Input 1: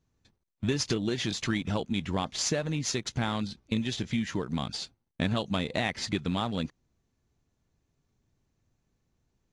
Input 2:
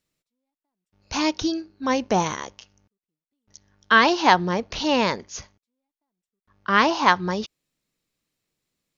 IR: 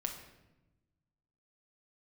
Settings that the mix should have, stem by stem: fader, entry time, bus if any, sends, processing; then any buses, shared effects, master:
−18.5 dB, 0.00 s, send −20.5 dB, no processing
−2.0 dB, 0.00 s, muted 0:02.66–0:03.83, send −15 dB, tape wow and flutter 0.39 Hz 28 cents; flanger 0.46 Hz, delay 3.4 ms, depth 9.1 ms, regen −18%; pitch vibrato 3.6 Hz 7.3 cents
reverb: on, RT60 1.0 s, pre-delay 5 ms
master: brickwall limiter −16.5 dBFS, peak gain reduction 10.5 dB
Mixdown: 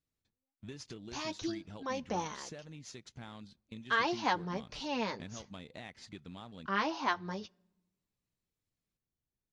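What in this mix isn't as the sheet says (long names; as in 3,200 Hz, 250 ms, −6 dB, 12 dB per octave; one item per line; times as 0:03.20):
stem 2 −2.0 dB → −11.5 dB
reverb return −9.0 dB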